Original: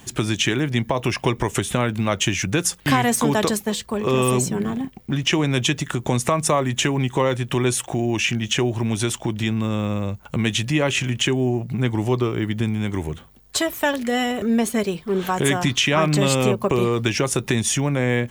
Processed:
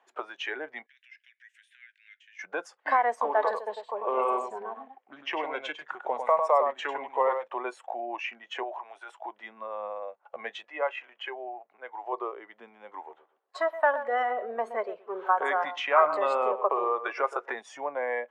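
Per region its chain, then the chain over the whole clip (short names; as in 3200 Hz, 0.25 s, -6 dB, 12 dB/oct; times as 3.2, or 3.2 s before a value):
0.86–2.39 steep high-pass 1600 Hz 96 dB/oct + compressor, threshold -30 dBFS
3.24–7.48 echo 0.1 s -5.5 dB + Doppler distortion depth 0.16 ms
8.63–9.17 HPF 450 Hz + transient shaper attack -11 dB, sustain +5 dB
10.64–12.13 HPF 500 Hz 6 dB/oct + high shelf 6400 Hz -10.5 dB
12.95–17.6 dynamic EQ 1300 Hz, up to +5 dB, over -40 dBFS, Q 2.2 + darkening echo 0.122 s, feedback 23%, low-pass 2200 Hz, level -10.5 dB
whole clip: HPF 570 Hz 24 dB/oct; spectral noise reduction 11 dB; LPF 1300 Hz 12 dB/oct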